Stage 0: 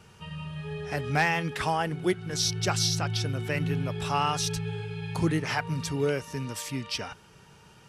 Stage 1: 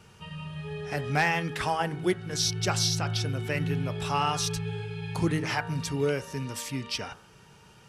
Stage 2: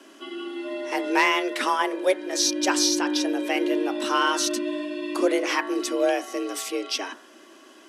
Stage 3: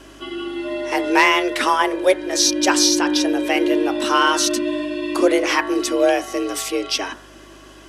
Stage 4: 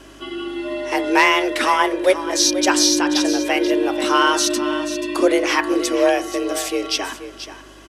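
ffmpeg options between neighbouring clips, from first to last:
ffmpeg -i in.wav -af "bandreject=frequency=79.32:width_type=h:width=4,bandreject=frequency=158.64:width_type=h:width=4,bandreject=frequency=237.96:width_type=h:width=4,bandreject=frequency=317.28:width_type=h:width=4,bandreject=frequency=396.6:width_type=h:width=4,bandreject=frequency=475.92:width_type=h:width=4,bandreject=frequency=555.24:width_type=h:width=4,bandreject=frequency=634.56:width_type=h:width=4,bandreject=frequency=713.88:width_type=h:width=4,bandreject=frequency=793.2:width_type=h:width=4,bandreject=frequency=872.52:width_type=h:width=4,bandreject=frequency=951.84:width_type=h:width=4,bandreject=frequency=1031.16:width_type=h:width=4,bandreject=frequency=1110.48:width_type=h:width=4,bandreject=frequency=1189.8:width_type=h:width=4,bandreject=frequency=1269.12:width_type=h:width=4,bandreject=frequency=1348.44:width_type=h:width=4,bandreject=frequency=1427.76:width_type=h:width=4,bandreject=frequency=1507.08:width_type=h:width=4,bandreject=frequency=1586.4:width_type=h:width=4,bandreject=frequency=1665.72:width_type=h:width=4,bandreject=frequency=1745.04:width_type=h:width=4,bandreject=frequency=1824.36:width_type=h:width=4,bandreject=frequency=1903.68:width_type=h:width=4" out.wav
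ffmpeg -i in.wav -af "afreqshift=190,volume=4.5dB" out.wav
ffmpeg -i in.wav -af "aeval=exprs='val(0)+0.00178*(sin(2*PI*50*n/s)+sin(2*PI*2*50*n/s)/2+sin(2*PI*3*50*n/s)/3+sin(2*PI*4*50*n/s)/4+sin(2*PI*5*50*n/s)/5)':channel_layout=same,volume=6dB" out.wav
ffmpeg -i in.wav -af "aecho=1:1:483:0.251" out.wav

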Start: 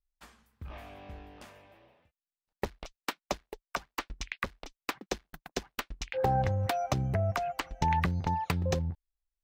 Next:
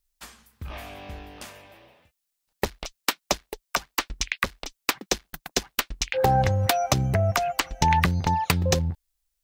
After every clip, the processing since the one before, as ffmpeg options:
ffmpeg -i in.wav -af "highshelf=frequency=3100:gain=10.5,volume=6.5dB" out.wav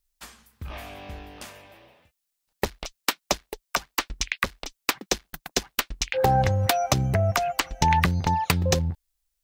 ffmpeg -i in.wav -af anull out.wav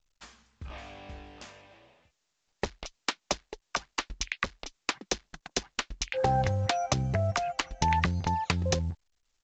ffmpeg -i in.wav -af "volume=-5.5dB" -ar 16000 -c:a pcm_mulaw out.wav

